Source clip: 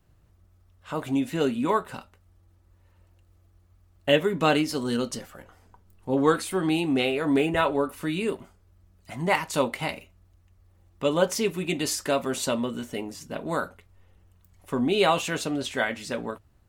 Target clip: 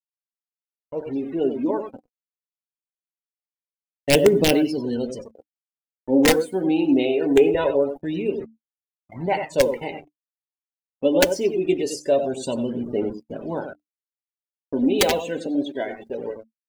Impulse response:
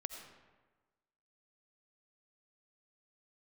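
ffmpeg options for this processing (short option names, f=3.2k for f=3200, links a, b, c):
-filter_complex "[0:a]equalizer=f=410:t=o:w=1.8:g=10,asplit=2[a][b];[b]aecho=0:1:93:0.398[c];[a][c]amix=inputs=2:normalize=0,aeval=exprs='(mod(1.58*val(0)+1,2)-1)/1.58':c=same,dynaudnorm=f=440:g=11:m=11.5dB,equalizer=f=1.2k:t=o:w=0.44:g=-14.5,acrusher=bits=4:mix=0:aa=0.000001,bandreject=f=74.57:t=h:w=4,bandreject=f=149.14:t=h:w=4,bandreject=f=223.71:t=h:w=4,bandreject=f=298.28:t=h:w=4,afftdn=nr=36:nf=-29,agate=range=-33dB:threshold=-36dB:ratio=3:detection=peak,aphaser=in_gain=1:out_gain=1:delay=4.2:decay=0.47:speed=0.23:type=triangular,volume=-7dB"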